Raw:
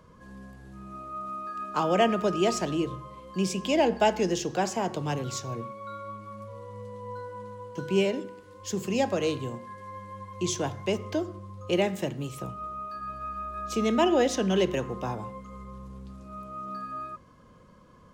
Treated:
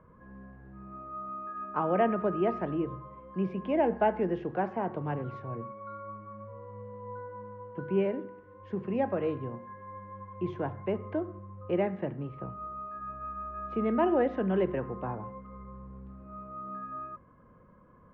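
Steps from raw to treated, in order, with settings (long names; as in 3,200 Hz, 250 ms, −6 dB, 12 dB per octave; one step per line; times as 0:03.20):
low-pass filter 1,900 Hz 24 dB per octave
level −3 dB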